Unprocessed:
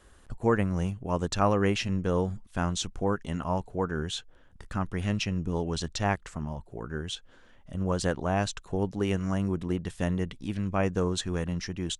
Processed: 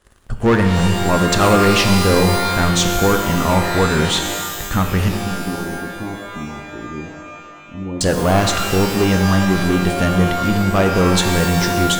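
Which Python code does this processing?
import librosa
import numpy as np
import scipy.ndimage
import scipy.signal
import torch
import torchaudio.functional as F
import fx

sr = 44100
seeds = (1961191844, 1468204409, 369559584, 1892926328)

y = fx.leveller(x, sr, passes=3)
y = fx.formant_cascade(y, sr, vowel='u', at=(5.08, 8.01))
y = fx.rev_shimmer(y, sr, seeds[0], rt60_s=1.7, semitones=12, shimmer_db=-2, drr_db=5.5)
y = y * librosa.db_to_amplitude(3.5)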